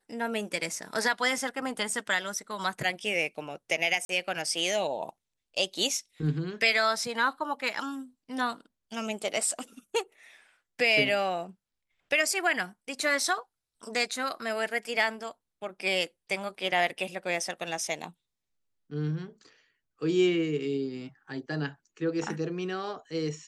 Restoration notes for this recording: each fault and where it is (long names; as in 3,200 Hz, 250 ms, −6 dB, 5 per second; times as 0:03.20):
0:04.05–0:04.09: drop-out 42 ms